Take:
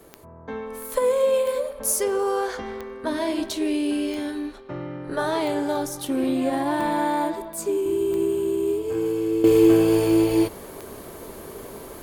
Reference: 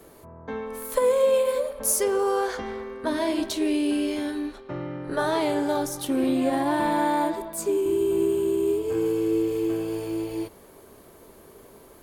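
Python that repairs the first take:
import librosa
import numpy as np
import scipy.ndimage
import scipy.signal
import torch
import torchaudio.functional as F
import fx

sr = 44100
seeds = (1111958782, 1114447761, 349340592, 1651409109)

y = fx.fix_declick_ar(x, sr, threshold=10.0)
y = fx.fix_level(y, sr, at_s=9.44, step_db=-11.0)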